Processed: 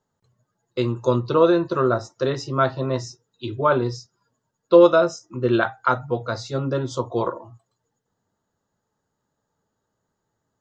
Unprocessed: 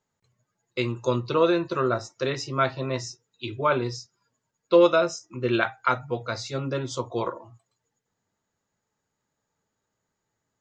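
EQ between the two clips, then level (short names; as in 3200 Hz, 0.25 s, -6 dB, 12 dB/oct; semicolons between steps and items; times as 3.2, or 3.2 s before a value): bell 2300 Hz -12 dB 0.49 oct; high shelf 3800 Hz -8 dB; +5.0 dB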